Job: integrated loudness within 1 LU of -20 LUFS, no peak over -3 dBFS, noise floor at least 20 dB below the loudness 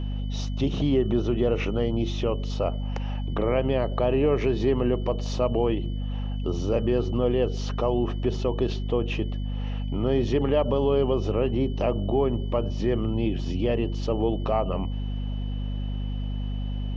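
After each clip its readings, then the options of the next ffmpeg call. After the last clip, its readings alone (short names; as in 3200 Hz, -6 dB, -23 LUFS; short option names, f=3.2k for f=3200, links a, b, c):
hum 50 Hz; harmonics up to 250 Hz; hum level -26 dBFS; steady tone 3000 Hz; tone level -49 dBFS; loudness -26.5 LUFS; peak -10.5 dBFS; loudness target -20.0 LUFS
-> -af "bandreject=f=50:t=h:w=6,bandreject=f=100:t=h:w=6,bandreject=f=150:t=h:w=6,bandreject=f=200:t=h:w=6,bandreject=f=250:t=h:w=6"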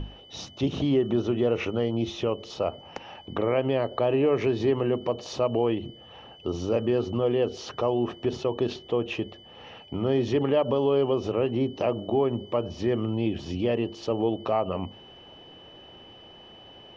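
hum none; steady tone 3000 Hz; tone level -49 dBFS
-> -af "bandreject=f=3k:w=30"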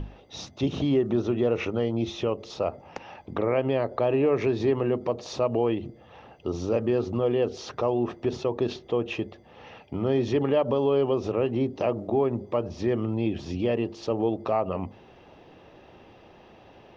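steady tone none; loudness -27.0 LUFS; peak -12.5 dBFS; loudness target -20.0 LUFS
-> -af "volume=7dB"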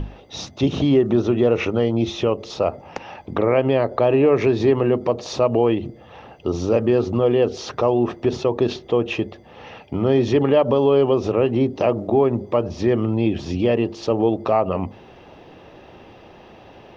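loudness -20.0 LUFS; peak -5.5 dBFS; noise floor -46 dBFS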